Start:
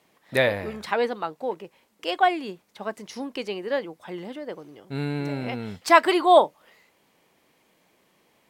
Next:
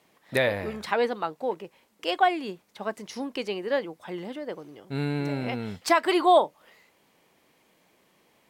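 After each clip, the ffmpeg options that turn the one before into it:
ffmpeg -i in.wav -af "alimiter=limit=-9.5dB:level=0:latency=1:release=240" out.wav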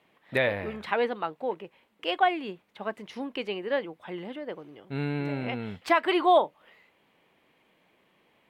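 ffmpeg -i in.wav -af "highshelf=frequency=4100:width_type=q:width=1.5:gain=-9.5,volume=-2dB" out.wav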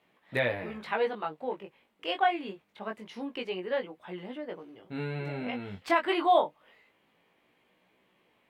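ffmpeg -i in.wav -af "flanger=delay=16:depth=4.9:speed=0.25" out.wav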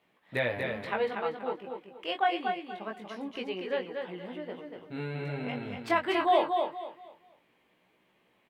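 ffmpeg -i in.wav -af "aecho=1:1:238|476|714|952:0.562|0.157|0.0441|0.0123,volume=-1.5dB" out.wav

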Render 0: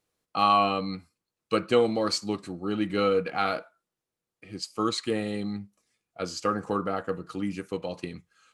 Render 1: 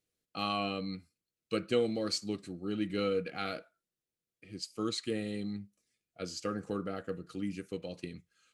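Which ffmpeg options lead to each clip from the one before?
ffmpeg -i in.wav -af "equalizer=frequency=960:width=1.6:gain=-14,volume=-5dB" out.wav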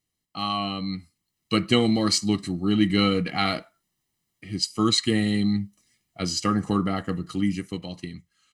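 ffmpeg -i in.wav -af "aecho=1:1:1:0.68,dynaudnorm=framelen=260:gausssize=9:maxgain=9.5dB,volume=3dB" out.wav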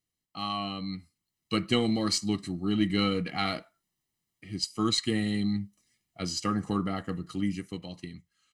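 ffmpeg -i in.wav -af "aeval=exprs='0.473*(cos(1*acos(clip(val(0)/0.473,-1,1)))-cos(1*PI/2))+0.0119*(cos(4*acos(clip(val(0)/0.473,-1,1)))-cos(4*PI/2))':channel_layout=same,volume=-5.5dB" out.wav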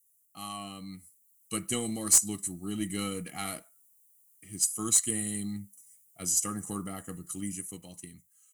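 ffmpeg -i in.wav -af "aexciter=amount=15.2:drive=8.7:freq=6900,aeval=exprs='1.06*(cos(1*acos(clip(val(0)/1.06,-1,1)))-cos(1*PI/2))+0.15*(cos(2*acos(clip(val(0)/1.06,-1,1)))-cos(2*PI/2))+0.0168*(cos(8*acos(clip(val(0)/1.06,-1,1)))-cos(8*PI/2))':channel_layout=same,volume=-7.5dB" out.wav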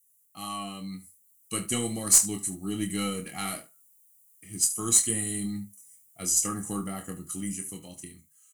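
ffmpeg -i in.wav -filter_complex "[0:a]flanger=delay=8.5:depth=3.4:regen=-66:speed=0.33:shape=triangular,asplit=2[link_01][link_02];[link_02]aecho=0:1:26|74:0.447|0.15[link_03];[link_01][link_03]amix=inputs=2:normalize=0,volume=6.5dB" out.wav

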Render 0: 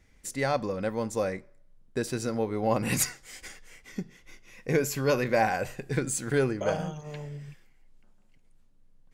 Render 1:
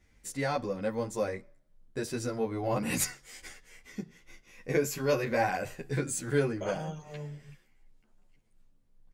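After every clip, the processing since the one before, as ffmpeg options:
ffmpeg -i in.wav -filter_complex "[0:a]asplit=2[link_01][link_02];[link_02]adelay=11.3,afreqshift=2.5[link_03];[link_01][link_03]amix=inputs=2:normalize=1" out.wav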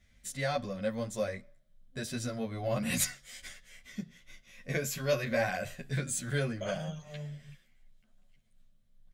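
ffmpeg -i in.wav -af "superequalizer=6b=0.316:7b=0.355:9b=0.355:10b=0.708:13b=1.78" out.wav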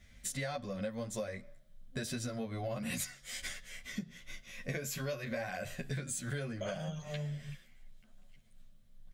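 ffmpeg -i in.wav -af "acompressor=threshold=-41dB:ratio=10,volume=6dB" out.wav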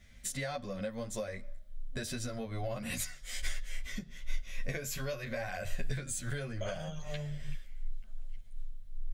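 ffmpeg -i in.wav -af "asubboost=boost=9:cutoff=59,volume=1dB" out.wav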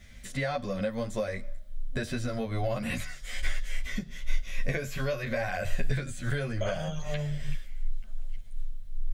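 ffmpeg -i in.wav -filter_complex "[0:a]acrossover=split=3100[link_01][link_02];[link_02]acompressor=threshold=-53dB:ratio=4:attack=1:release=60[link_03];[link_01][link_03]amix=inputs=2:normalize=0,volume=7dB" out.wav

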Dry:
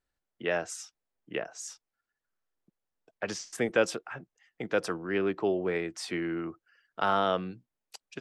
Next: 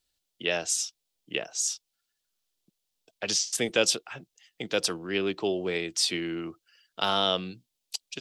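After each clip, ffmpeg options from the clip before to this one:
ffmpeg -i in.wav -af "highshelf=frequency=2400:width_type=q:width=1.5:gain=12" out.wav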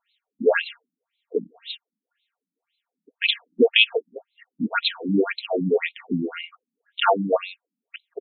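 ffmpeg -i in.wav -af "aecho=1:1:4.3:0.72,alimiter=level_in=12dB:limit=-1dB:release=50:level=0:latency=1,afftfilt=real='re*between(b*sr/1024,210*pow(3000/210,0.5+0.5*sin(2*PI*1.9*pts/sr))/1.41,210*pow(3000/210,0.5+0.5*sin(2*PI*1.9*pts/sr))*1.41)':imag='im*between(b*sr/1024,210*pow(3000/210,0.5+0.5*sin(2*PI*1.9*pts/sr))/1.41,210*pow(3000/210,0.5+0.5*sin(2*PI*1.9*pts/sr))*1.41)':win_size=1024:overlap=0.75,volume=1.5dB" out.wav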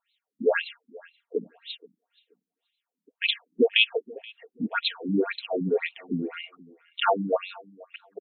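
ffmpeg -i in.wav -filter_complex "[0:a]asplit=2[link_01][link_02];[link_02]adelay=478,lowpass=frequency=3200:poles=1,volume=-22.5dB,asplit=2[link_03][link_04];[link_04]adelay=478,lowpass=frequency=3200:poles=1,volume=0.22[link_05];[link_01][link_03][link_05]amix=inputs=3:normalize=0,volume=-4dB" out.wav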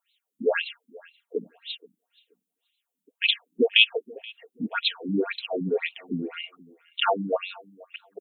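ffmpeg -i in.wav -af "aexciter=amount=2.2:drive=0.9:freq=2600,volume=-1dB" out.wav

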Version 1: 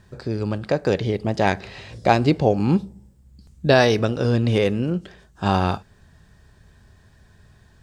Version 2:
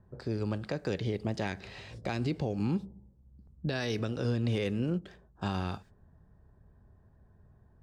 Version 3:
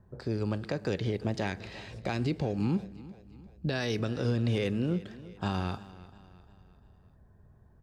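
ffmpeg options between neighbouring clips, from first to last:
ffmpeg -i in.wav -filter_complex "[0:a]acrossover=split=430|1200[link_01][link_02][link_03];[link_02]acompressor=threshold=-30dB:ratio=6[link_04];[link_03]agate=range=-26dB:threshold=-51dB:ratio=16:detection=peak[link_05];[link_01][link_04][link_05]amix=inputs=3:normalize=0,alimiter=limit=-14.5dB:level=0:latency=1:release=146,volume=-7.5dB" out.wav
ffmpeg -i in.wav -af "aecho=1:1:348|696|1044|1392:0.126|0.0592|0.0278|0.0131,volume=1.5dB" out.wav

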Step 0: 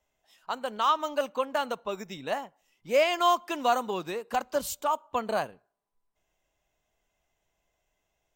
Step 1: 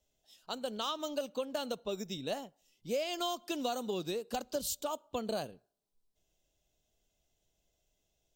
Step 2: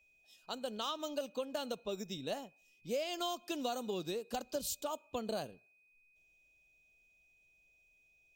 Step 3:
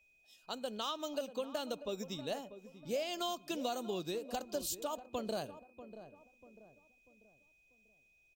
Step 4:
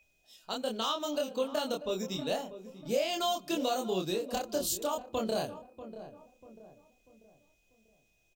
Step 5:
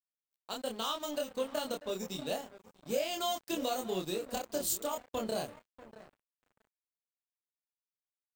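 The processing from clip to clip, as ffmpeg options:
ffmpeg -i in.wav -af "equalizer=frequency=1000:width_type=o:width=1:gain=-12,equalizer=frequency=2000:width_type=o:width=1:gain=-11,equalizer=frequency=4000:width_type=o:width=1:gain=5,acompressor=threshold=-32dB:ratio=6,volume=1dB" out.wav
ffmpeg -i in.wav -af "aeval=exprs='val(0)+0.000562*sin(2*PI*2500*n/s)':channel_layout=same,volume=-2.5dB" out.wav
ffmpeg -i in.wav -filter_complex "[0:a]asplit=2[link_01][link_02];[link_02]adelay=641,lowpass=frequency=990:poles=1,volume=-12dB,asplit=2[link_03][link_04];[link_04]adelay=641,lowpass=frequency=990:poles=1,volume=0.44,asplit=2[link_05][link_06];[link_06]adelay=641,lowpass=frequency=990:poles=1,volume=0.44,asplit=2[link_07][link_08];[link_08]adelay=641,lowpass=frequency=990:poles=1,volume=0.44[link_09];[link_01][link_03][link_05][link_07][link_09]amix=inputs=5:normalize=0" out.wav
ffmpeg -i in.wav -filter_complex "[0:a]asplit=2[link_01][link_02];[link_02]adelay=27,volume=-2.5dB[link_03];[link_01][link_03]amix=inputs=2:normalize=0,volume=4.5dB" out.wav
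ffmpeg -i in.wav -af "aeval=exprs='sgn(val(0))*max(abs(val(0))-0.00501,0)':channel_layout=same,aexciter=amount=2.1:drive=1.4:freq=7500,volume=-2dB" out.wav

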